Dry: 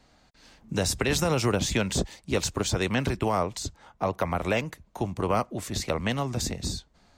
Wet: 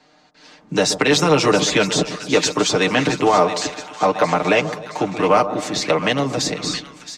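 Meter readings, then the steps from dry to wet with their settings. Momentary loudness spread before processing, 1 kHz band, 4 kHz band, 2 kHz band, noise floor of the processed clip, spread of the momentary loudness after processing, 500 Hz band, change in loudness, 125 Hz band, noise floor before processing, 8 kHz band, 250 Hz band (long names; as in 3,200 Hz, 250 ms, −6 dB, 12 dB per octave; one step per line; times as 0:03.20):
9 LU, +11.5 dB, +11.0 dB, +11.0 dB, −53 dBFS, 9 LU, +11.0 dB, +9.5 dB, +2.5 dB, −61 dBFS, +7.5 dB, +8.5 dB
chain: three-way crossover with the lows and the highs turned down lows −22 dB, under 180 Hz, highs −20 dB, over 7,200 Hz
comb filter 6.6 ms, depth 72%
automatic gain control gain up to 4 dB
in parallel at −8 dB: sine wavefolder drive 4 dB, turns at −6 dBFS
on the sum: echo with a time of its own for lows and highs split 1,200 Hz, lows 129 ms, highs 671 ms, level −11.5 dB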